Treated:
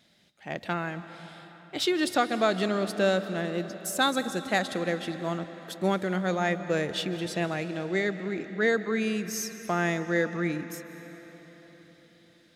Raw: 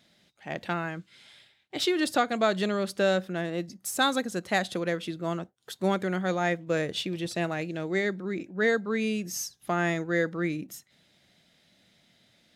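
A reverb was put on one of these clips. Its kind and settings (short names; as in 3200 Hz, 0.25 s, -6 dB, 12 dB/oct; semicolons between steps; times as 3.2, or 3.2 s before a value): digital reverb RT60 4.7 s, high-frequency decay 0.8×, pre-delay 0.11 s, DRR 11 dB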